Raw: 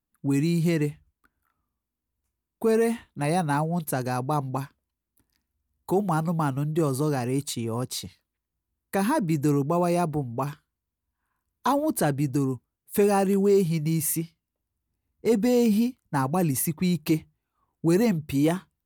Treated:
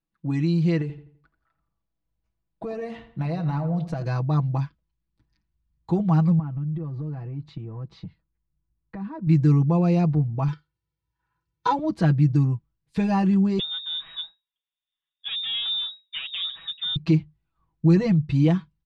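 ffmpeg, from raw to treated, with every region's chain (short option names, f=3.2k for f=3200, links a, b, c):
-filter_complex "[0:a]asettb=1/sr,asplit=3[a][b][c];[a]atrim=end=0.814[d];[b]atrim=start=0.81:end=4.04,asetpts=PTS-STARTPTS,afade=t=in:d=0.004:c=qsin,afade=t=out:st=3.226:d=0.004:c=qsin,equalizer=f=630:t=o:w=0.69:g=7,acompressor=threshold=-26dB:ratio=5:attack=3.2:release=140:knee=1:detection=peak,asplit=2[e][f];[f]adelay=84,lowpass=f=3k:p=1,volume=-10.5dB,asplit=2[g][h];[h]adelay=84,lowpass=f=3k:p=1,volume=0.39,asplit=2[i][j];[j]adelay=84,lowpass=f=3k:p=1,volume=0.39,asplit=2[k][l];[l]adelay=84,lowpass=f=3k:p=1,volume=0.39[m];[e][g][i][k][m]amix=inputs=5:normalize=0,atrim=end_sample=142443[n];[c]atrim=start=4.036[o];[d][n]acrossfade=d=0.004:c1=hsin:c2=qsin[p];[p][o]acrossfade=d=0.004:c1=qsin:c2=hsin,asettb=1/sr,asplit=3[q][r][s];[q]atrim=end=6.394[t];[r]atrim=start=6.39:end=9.27,asetpts=PTS-STARTPTS,afade=t=in:d=0.004:c=qsin,afade=t=out:st=2.876:d=0.004:c=qsin,lowpass=f=1.6k:p=1,aemphasis=mode=reproduction:type=75kf,acompressor=threshold=-35dB:ratio=4:attack=3.2:release=140:knee=1:detection=peak[u];[s]atrim=start=9.266[v];[t][u]acrossfade=d=0.004:c1=hsin:c2=qsin[w];[w][v]acrossfade=d=0.004:c1=qsin:c2=hsin,asettb=1/sr,asplit=3[x][y][z];[x]atrim=end=10.484[aa];[y]atrim=start=10.48:end=11.79,asetpts=PTS-STARTPTS,afade=t=in:d=0.004:c=qsin,afade=t=out:st=1.306:d=0.004:c=qsin,highpass=110,aecho=1:1:2.2:0.93,atrim=end_sample=57771[ab];[z]atrim=start=11.786[ac];[aa][ab]acrossfade=d=0.004:c1=hsin:c2=qsin[ad];[ad][ac]acrossfade=d=0.004:c1=qsin:c2=hsin,asettb=1/sr,asplit=3[ae][af][ag];[ae]atrim=end=13.594[ah];[af]atrim=start=13.59:end=16.96,asetpts=PTS-STARTPTS,afade=t=in:d=0.004:c=qsin,afade=t=out:st=3.366:d=0.004:c=qsin,highpass=180,aeval=exprs='(tanh(15.8*val(0)+0.3)-tanh(0.3))/15.8':c=same,lowpass=f=3.2k:t=q:w=0.5098,lowpass=f=3.2k:t=q:w=0.6013,lowpass=f=3.2k:t=q:w=0.9,lowpass=f=3.2k:t=q:w=2.563,afreqshift=-3800[ai];[ag]atrim=start=16.956[aj];[ah][ai]acrossfade=d=0.004:c1=hsin:c2=qsin[ak];[ak][aj]acrossfade=d=0.004:c1=qsin:c2=hsin,asubboost=boost=4:cutoff=190,lowpass=f=5k:w=0.5412,lowpass=f=5k:w=1.3066,aecho=1:1:6.1:0.8,volume=-3.5dB"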